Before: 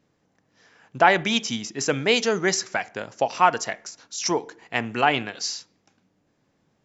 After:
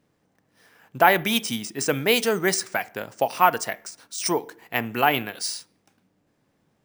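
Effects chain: careless resampling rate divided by 3×, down none, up hold

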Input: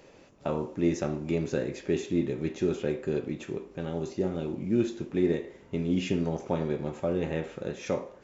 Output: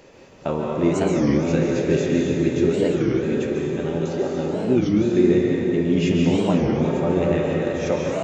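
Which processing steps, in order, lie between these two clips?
3.92–4.37 s: high-pass 170 Hz -> 510 Hz; plate-style reverb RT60 3.6 s, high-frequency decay 0.65×, pre-delay 120 ms, DRR -2.5 dB; warped record 33 1/3 rpm, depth 250 cents; trim +5.5 dB

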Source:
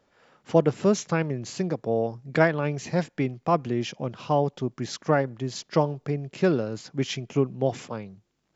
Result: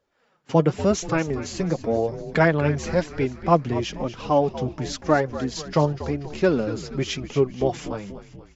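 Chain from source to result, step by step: gate -47 dBFS, range -10 dB; flange 0.95 Hz, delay 1.7 ms, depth 5.8 ms, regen +30%; frequency-shifting echo 240 ms, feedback 54%, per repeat -72 Hz, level -13 dB; trim +6.5 dB

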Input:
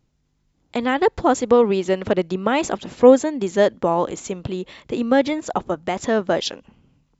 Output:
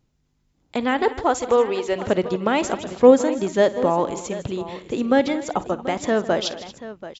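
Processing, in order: 1.02–1.96 s: peaking EQ 180 Hz -14 dB 1.2 oct; multi-tap echo 52/155/231/734 ms -18/-16/-17.5/-15 dB; trim -1 dB

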